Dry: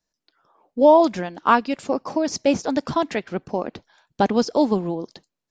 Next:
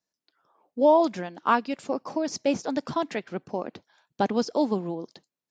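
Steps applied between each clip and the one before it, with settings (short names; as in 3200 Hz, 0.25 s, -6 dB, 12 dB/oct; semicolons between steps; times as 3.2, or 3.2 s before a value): HPF 110 Hz 12 dB/oct; gain -5.5 dB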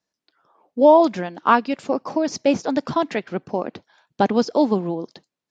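air absorption 59 m; gain +6.5 dB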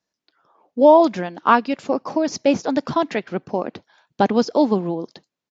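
downsampling 16000 Hz; gain +1 dB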